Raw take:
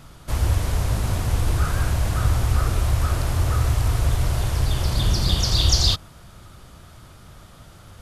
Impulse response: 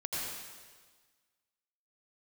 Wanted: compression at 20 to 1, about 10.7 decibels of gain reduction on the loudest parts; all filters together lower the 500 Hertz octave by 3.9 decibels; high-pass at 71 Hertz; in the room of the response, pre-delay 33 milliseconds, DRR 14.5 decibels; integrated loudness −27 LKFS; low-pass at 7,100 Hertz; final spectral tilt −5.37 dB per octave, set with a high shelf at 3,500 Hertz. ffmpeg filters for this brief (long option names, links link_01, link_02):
-filter_complex "[0:a]highpass=71,lowpass=7100,equalizer=frequency=500:width_type=o:gain=-5,highshelf=frequency=3500:gain=-7.5,acompressor=threshold=-28dB:ratio=20,asplit=2[link_01][link_02];[1:a]atrim=start_sample=2205,adelay=33[link_03];[link_02][link_03]afir=irnorm=-1:irlink=0,volume=-18.5dB[link_04];[link_01][link_04]amix=inputs=2:normalize=0,volume=6.5dB"